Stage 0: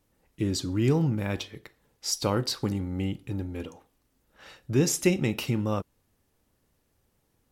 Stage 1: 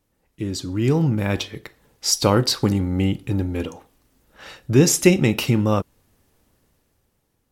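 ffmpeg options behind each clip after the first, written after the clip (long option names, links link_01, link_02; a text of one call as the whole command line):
ffmpeg -i in.wav -af "dynaudnorm=framelen=200:gausssize=11:maxgain=12dB" out.wav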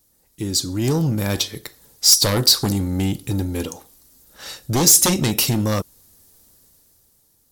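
ffmpeg -i in.wav -af "aeval=exprs='0.841*sin(PI/2*3.16*val(0)/0.841)':channel_layout=same,aexciter=amount=3.8:drive=6.5:freq=3800,volume=-13dB" out.wav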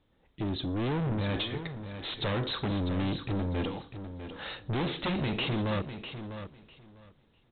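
ffmpeg -i in.wav -af "aresample=8000,asoftclip=type=tanh:threshold=-28.5dB,aresample=44100,aecho=1:1:650|1300|1950:0.316|0.0569|0.0102" out.wav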